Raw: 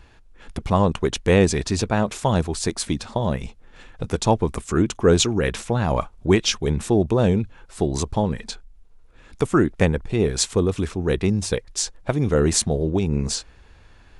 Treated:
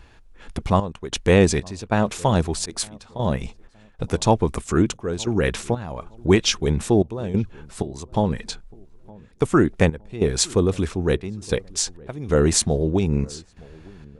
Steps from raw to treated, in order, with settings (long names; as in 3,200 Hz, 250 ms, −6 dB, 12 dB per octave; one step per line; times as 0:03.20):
0:02.56–0:03.02: volume swells 117 ms
gate pattern "xxxxx..xxx..x" 94 BPM −12 dB
feedback echo with a low-pass in the loop 914 ms, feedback 36%, low-pass 810 Hz, level −23 dB
level +1 dB